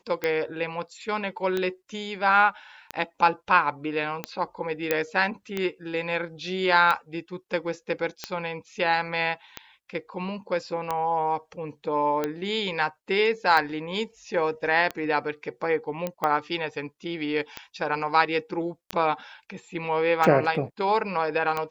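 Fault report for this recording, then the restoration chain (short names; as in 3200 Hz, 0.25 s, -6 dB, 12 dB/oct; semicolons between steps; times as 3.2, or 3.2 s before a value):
tick 45 rpm -13 dBFS
4.91 pop -8 dBFS
16.07 pop -15 dBFS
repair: de-click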